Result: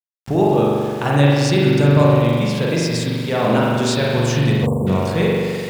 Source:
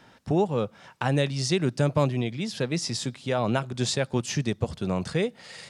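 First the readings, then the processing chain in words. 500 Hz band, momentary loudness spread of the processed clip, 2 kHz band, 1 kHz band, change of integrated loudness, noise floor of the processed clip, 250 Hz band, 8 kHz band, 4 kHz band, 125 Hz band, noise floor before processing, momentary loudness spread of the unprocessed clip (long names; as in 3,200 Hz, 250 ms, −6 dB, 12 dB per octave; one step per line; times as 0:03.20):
+10.5 dB, 6 LU, +10.0 dB, +10.5 dB, +10.5 dB, −28 dBFS, +10.5 dB, +4.0 dB, +7.0 dB, +11.5 dB, −56 dBFS, 6 LU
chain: spring reverb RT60 2.1 s, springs 42 ms, chirp 25 ms, DRR −5.5 dB
centre clipping without the shift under −37 dBFS
time-frequency box erased 0:04.66–0:04.87, 1,200–7,100 Hz
level +3.5 dB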